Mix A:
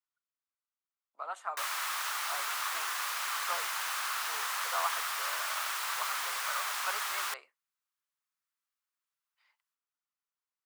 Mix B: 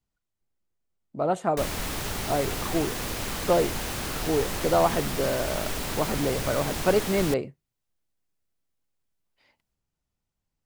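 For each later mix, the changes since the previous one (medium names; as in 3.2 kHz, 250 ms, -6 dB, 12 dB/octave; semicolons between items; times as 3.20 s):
background -7.0 dB; master: remove ladder high-pass 1 kHz, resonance 50%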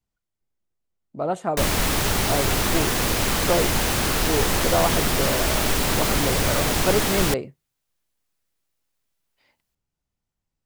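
background +9.5 dB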